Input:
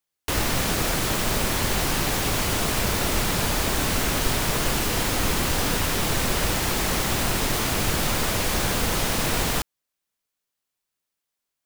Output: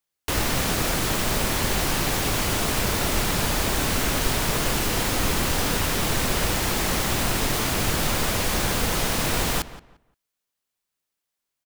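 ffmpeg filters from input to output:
-filter_complex "[0:a]asplit=2[s0][s1];[s1]adelay=174,lowpass=f=2600:p=1,volume=0.178,asplit=2[s2][s3];[s3]adelay=174,lowpass=f=2600:p=1,volume=0.24,asplit=2[s4][s5];[s5]adelay=174,lowpass=f=2600:p=1,volume=0.24[s6];[s0][s2][s4][s6]amix=inputs=4:normalize=0"

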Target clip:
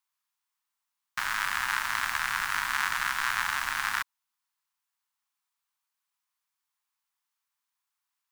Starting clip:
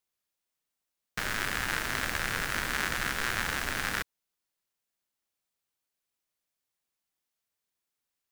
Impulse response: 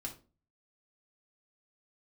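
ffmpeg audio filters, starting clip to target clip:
-af "lowshelf=f=700:t=q:w=3:g=-12"

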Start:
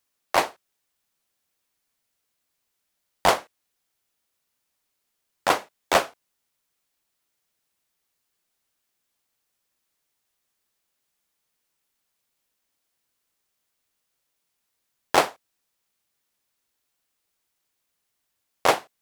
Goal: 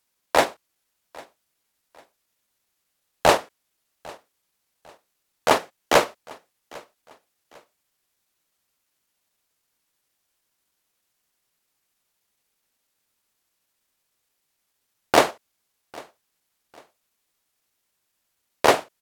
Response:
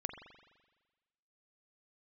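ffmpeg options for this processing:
-af "asetrate=38170,aresample=44100,atempo=1.15535,aecho=1:1:800|1600:0.0668|0.0221,volume=1.33"

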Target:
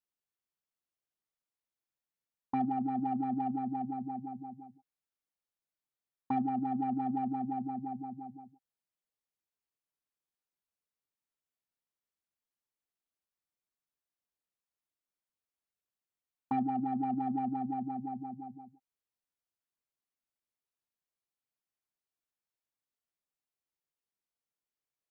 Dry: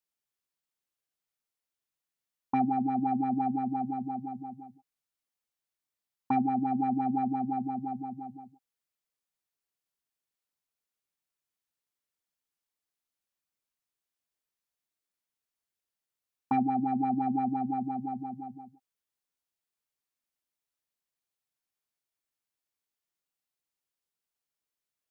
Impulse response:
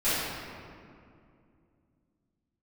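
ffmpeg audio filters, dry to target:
-filter_complex "[0:a]highshelf=f=2000:g=-6.5,asplit=2[s0][s1];[s1]asoftclip=type=tanh:threshold=0.0316,volume=0.251[s2];[s0][s2]amix=inputs=2:normalize=0,volume=0.562"

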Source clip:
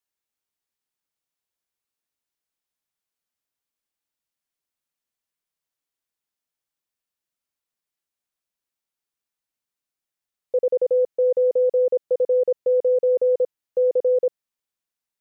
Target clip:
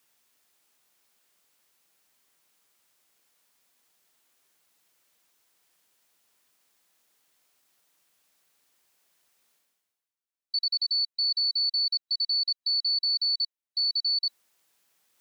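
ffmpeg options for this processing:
-af "afftfilt=real='real(if(lt(b,736),b+184*(1-2*mod(floor(b/184),2)),b),0)':imag='imag(if(lt(b,736),b+184*(1-2*mod(floor(b/184),2)),b),0)':win_size=2048:overlap=0.75,highpass=f=210:p=1,areverse,acompressor=mode=upward:threshold=0.00891:ratio=2.5,areverse,volume=0.422"

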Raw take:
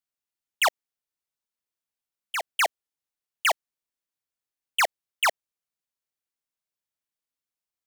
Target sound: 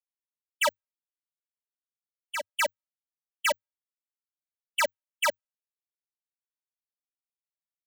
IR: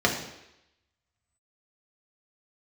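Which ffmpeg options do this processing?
-af "afftfilt=real='hypot(re,im)*cos(PI*b)':imag='0':win_size=512:overlap=0.75,afreqshift=-100,afftdn=nr=31:nf=-49"

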